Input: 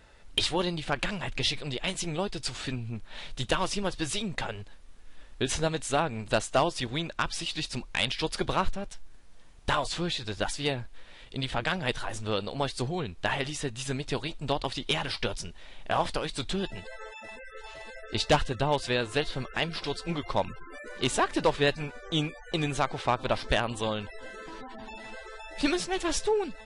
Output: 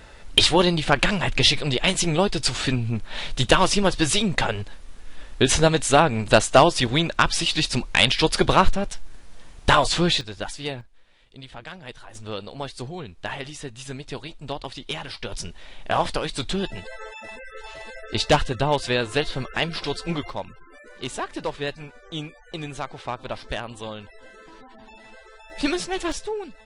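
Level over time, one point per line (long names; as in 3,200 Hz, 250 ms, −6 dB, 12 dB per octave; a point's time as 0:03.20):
+10.5 dB
from 0:10.21 −1 dB
from 0:10.81 −9.5 dB
from 0:12.15 −2.5 dB
from 0:15.32 +5 dB
from 0:20.30 −4 dB
from 0:25.50 +3 dB
from 0:26.12 −3 dB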